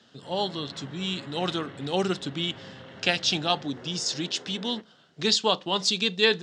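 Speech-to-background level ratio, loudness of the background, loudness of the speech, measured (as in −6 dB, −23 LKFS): 18.5 dB, −45.5 LKFS, −27.0 LKFS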